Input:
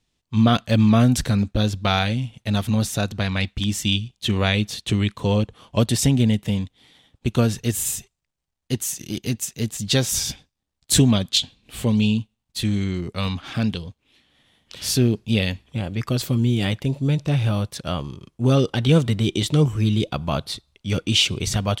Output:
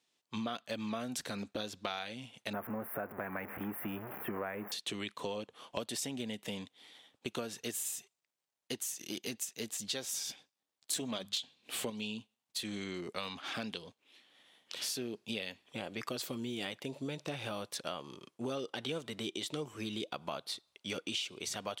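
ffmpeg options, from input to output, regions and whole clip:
ffmpeg -i in.wav -filter_complex "[0:a]asettb=1/sr,asplit=3[link_01][link_02][link_03];[link_01]atrim=end=2.534[link_04];[link_02]atrim=start=2.53:end=4.72,asetpts=PTS-STARTPTS,afade=type=in:duration=0.004:curve=qsin,afade=type=out:start_time=2.186:duration=0.004:curve=qsin,aeval=exprs='val(0)+0.5*0.0501*sgn(val(0))':channel_layout=same,asuperstop=centerf=5400:order=8:qfactor=0.51[link_05];[link_03]atrim=start=4.716[link_06];[link_04][link_05]acrossfade=duration=0.004:curve1=hsin:curve2=qsin[link_07];[link_07][link_06]acrossfade=duration=0.004:curve1=qsin:curve2=hsin,asettb=1/sr,asplit=3[link_08][link_09][link_10];[link_08]atrim=end=10.934[link_11];[link_09]atrim=start=10.93:end=11.9,asetpts=PTS-STARTPTS,afade=type=in:duration=0.004:curve=qsin,afade=type=out:start_time=0.966:duration=0.004:curve=qsin,bandreject=frequency=50:width_type=h:width=6,bandreject=frequency=100:width_type=h:width=6,bandreject=frequency=150:width_type=h:width=6,bandreject=frequency=200:width_type=h:width=6,acontrast=63[link_12];[link_10]atrim=start=11.896[link_13];[link_11][link_12]acrossfade=duration=0.004:curve1=hsin:curve2=qsin[link_14];[link_14][link_13]acrossfade=duration=0.004:curve1=qsin:curve2=hsin,highpass=370,acompressor=threshold=-33dB:ratio=6,volume=-3dB" out.wav

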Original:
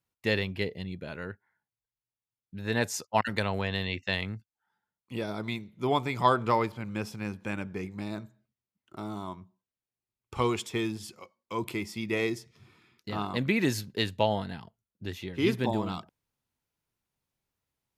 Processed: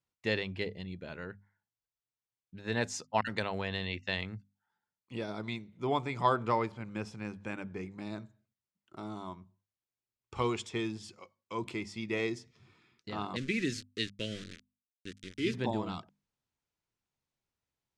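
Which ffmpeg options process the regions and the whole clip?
ffmpeg -i in.wav -filter_complex "[0:a]asettb=1/sr,asplit=3[link_01][link_02][link_03];[link_01]atrim=end=5.624[link_04];[link_02]atrim=start=5.62:end=8.05,asetpts=PTS-STARTPTS,afade=type=in:duration=0.004:curve=qsin,afade=type=out:start_time=2.426:duration=0.004:curve=qsin,equalizer=frequency=4300:width=0.92:gain=-3,acompressor=mode=upward:threshold=-48dB:ratio=2.5:attack=3.2:release=140:knee=2.83:detection=peak[link_05];[link_03]atrim=start=8.046[link_06];[link_04][link_05]acrossfade=duration=0.004:curve1=hsin:curve2=qsin[link_07];[link_07][link_06]acrossfade=duration=0.004:curve1=qsin:curve2=hsin,asettb=1/sr,asplit=3[link_08][link_09][link_10];[link_08]atrim=end=13.364[link_11];[link_09]atrim=start=13.36:end=15.54,asetpts=PTS-STARTPTS,afade=type=in:duration=0.004:curve=qsin,afade=type=out:start_time=2.176:duration=0.004:curve=qsin,lowshelf=frequency=88:gain=-10.5,aeval=exprs='val(0)*gte(abs(val(0)),0.0178)':channel_layout=same,asuperstop=centerf=830:order=4:qfactor=0.65[link_12];[link_10]atrim=start=15.536[link_13];[link_11][link_12]acrossfade=duration=0.004:curve1=hsin:curve2=qsin[link_14];[link_14][link_13]acrossfade=duration=0.004:curve1=qsin:curve2=hsin,lowpass=frequency=8200:width=0.5412,lowpass=frequency=8200:width=1.3066,bandreject=frequency=50:width_type=h:width=6,bandreject=frequency=100:width_type=h:width=6,bandreject=frequency=150:width_type=h:width=6,bandreject=frequency=200:width_type=h:width=6,bandreject=frequency=250:width_type=h:width=6,volume=-4dB" out.wav

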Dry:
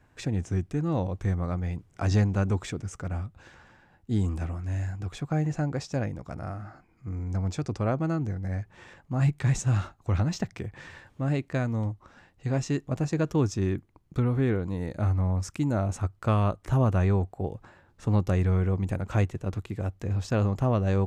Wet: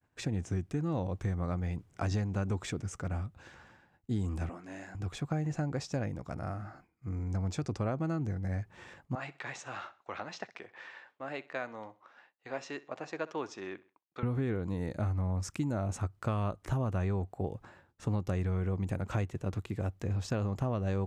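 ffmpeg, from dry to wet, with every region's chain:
ffmpeg -i in.wav -filter_complex "[0:a]asettb=1/sr,asplit=3[link_01][link_02][link_03];[link_01]atrim=end=4.494[link_04];[link_02]atrim=start=4.49:end=4.95,asetpts=PTS-STARTPTS,afade=type=in:duration=0.004:curve=qsin,afade=type=out:start_time=0.456:duration=0.004:curve=qsin,highpass=frequency=210:width=0.5412,highpass=frequency=210:width=1.3066,highshelf=frequency=7600:gain=-8.5[link_05];[link_03]atrim=start=4.946[link_06];[link_04][link_05]acrossfade=duration=0.004:curve1=hsin:curve2=qsin[link_07];[link_07][link_06]acrossfade=duration=0.004:curve1=qsin:curve2=hsin,asettb=1/sr,asplit=3[link_08][link_09][link_10];[link_08]atrim=end=9.154[link_11];[link_09]atrim=start=9.15:end=14.23,asetpts=PTS-STARTPTS,afade=type=in:duration=0.004:curve=qsin,afade=type=out:start_time=5.076:duration=0.004:curve=qsin,highpass=610,lowpass=3700,aecho=1:1:64|128|192:0.1|0.039|0.0152,atrim=end_sample=224028[link_12];[link_10]atrim=start=14.226[link_13];[link_11][link_12]acrossfade=duration=0.004:curve1=hsin:curve2=qsin[link_14];[link_14][link_13]acrossfade=duration=0.004:curve1=qsin:curve2=hsin,highpass=frequency=54:poles=1,agate=range=-33dB:threshold=-54dB:ratio=3:detection=peak,acompressor=threshold=-27dB:ratio=6,volume=-1.5dB" out.wav

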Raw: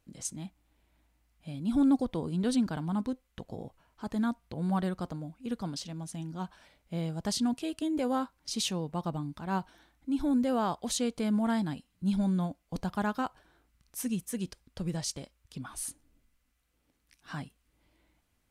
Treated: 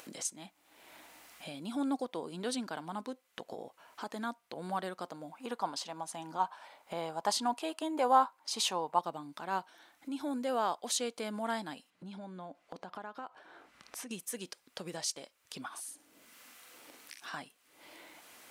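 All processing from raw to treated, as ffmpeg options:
ffmpeg -i in.wav -filter_complex "[0:a]asettb=1/sr,asplit=3[link_01][link_02][link_03];[link_01]atrim=end=5.314[link_04];[link_02]atrim=start=5.31:end=8.99,asetpts=PTS-STARTPTS,afade=type=in:duration=0.004:curve=qsin,afade=type=out:start_time=3.676:duration=0.004:curve=qsin,equalizer=frequency=920:width_type=o:width=1:gain=13,bandreject=frequency=5700:width=22[link_05];[link_03]atrim=start=8.986[link_06];[link_04][link_05]acrossfade=duration=0.004:curve1=hsin:curve2=qsin[link_07];[link_07][link_06]acrossfade=duration=0.004:curve1=qsin:curve2=hsin,asettb=1/sr,asplit=3[link_08][link_09][link_10];[link_08]atrim=end=11.904[link_11];[link_09]atrim=start=11.9:end=14.11,asetpts=PTS-STARTPTS,afade=type=in:duration=0.004:curve=qsin,afade=type=out:start_time=2.206:duration=0.004:curve=qsin,aemphasis=mode=reproduction:type=75fm,acompressor=threshold=-44dB:ratio=3:attack=3.2:release=140:knee=1:detection=peak[link_12];[link_10]atrim=start=14.106[link_13];[link_11][link_12]acrossfade=duration=0.004:curve1=hsin:curve2=qsin[link_14];[link_14][link_13]acrossfade=duration=0.004:curve1=qsin:curve2=hsin,asettb=1/sr,asplit=3[link_15][link_16][link_17];[link_15]atrim=end=15.684[link_18];[link_16]atrim=start=15.68:end=17.34,asetpts=PTS-STARTPTS,afade=type=in:duration=0.004:curve=qsin,afade=type=out:start_time=1.656:duration=0.004:curve=qsin,acompressor=threshold=-49dB:ratio=4:attack=3.2:release=140:knee=1:detection=peak,asplit=2[link_19][link_20];[link_20]adelay=44,volume=-5dB[link_21];[link_19][link_21]amix=inputs=2:normalize=0,atrim=end_sample=73206[link_22];[link_17]atrim=start=17.336[link_23];[link_18][link_22]acrossfade=duration=0.004:curve1=hsin:curve2=qsin[link_24];[link_24][link_23]acrossfade=duration=0.004:curve1=qsin:curve2=hsin,highpass=460,acompressor=mode=upward:threshold=-36dB:ratio=2.5" out.wav

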